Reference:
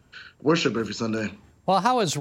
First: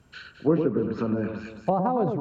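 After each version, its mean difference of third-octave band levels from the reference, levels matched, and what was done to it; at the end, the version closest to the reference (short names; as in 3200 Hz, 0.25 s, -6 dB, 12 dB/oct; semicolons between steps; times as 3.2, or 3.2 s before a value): 9.0 dB: echo with dull and thin repeats by turns 0.108 s, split 1200 Hz, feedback 58%, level -5.5 dB; treble ducked by the level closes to 640 Hz, closed at -20.5 dBFS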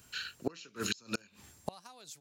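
12.5 dB: pre-emphasis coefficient 0.9; flipped gate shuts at -32 dBFS, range -30 dB; gain +13 dB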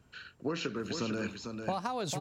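5.5 dB: compressor, threshold -26 dBFS, peak gain reduction 11 dB; on a send: echo 0.449 s -6 dB; on the sum: gain -5 dB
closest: third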